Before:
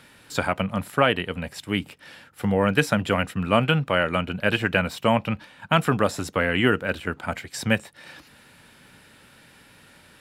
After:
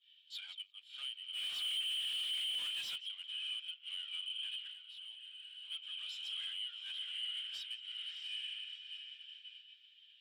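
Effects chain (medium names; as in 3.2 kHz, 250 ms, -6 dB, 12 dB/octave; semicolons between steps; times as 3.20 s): echo that smears into a reverb 690 ms, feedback 46%, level -7 dB; power-law waveshaper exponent 0.7; in parallel at -4 dB: saturation -14.5 dBFS, distortion -12 dB; on the sum: ladder band-pass 3.3 kHz, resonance 80%; feedback echo behind a high-pass 174 ms, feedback 35%, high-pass 3.3 kHz, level -9 dB; compression 16:1, threshold -28 dBFS, peak gain reduction 12.5 dB; hard clipper -32.5 dBFS, distortion -9 dB; 1.33–2.96 s: waveshaping leveller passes 5; 4.71–5.70 s: band-stop 2.4 kHz, Q 15; peak limiter -36 dBFS, peak gain reduction 7 dB; expander -33 dBFS; spectral contrast expander 1.5:1; trim +10 dB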